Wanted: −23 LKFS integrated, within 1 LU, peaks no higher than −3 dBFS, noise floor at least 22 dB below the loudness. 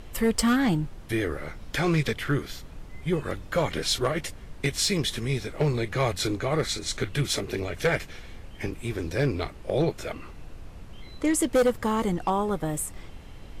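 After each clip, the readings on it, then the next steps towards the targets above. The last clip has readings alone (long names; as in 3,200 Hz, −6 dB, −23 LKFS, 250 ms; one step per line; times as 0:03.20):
share of clipped samples 0.7%; peaks flattened at −16.5 dBFS; background noise floor −44 dBFS; target noise floor −50 dBFS; integrated loudness −27.5 LKFS; sample peak −16.5 dBFS; target loudness −23.0 LKFS
→ clipped peaks rebuilt −16.5 dBFS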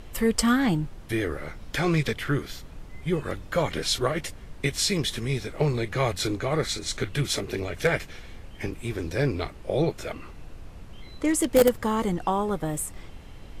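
share of clipped samples 0.0%; background noise floor −44 dBFS; target noise floor −49 dBFS
→ noise reduction from a noise print 6 dB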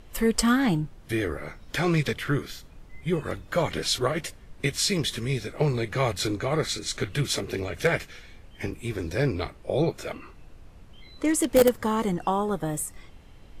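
background noise floor −49 dBFS; integrated loudness −27.0 LKFS; sample peak −7.5 dBFS; target loudness −23.0 LKFS
→ level +4 dB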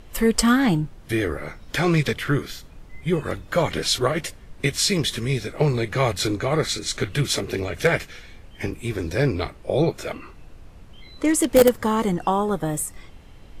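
integrated loudness −23.0 LKFS; sample peak −3.5 dBFS; background noise floor −45 dBFS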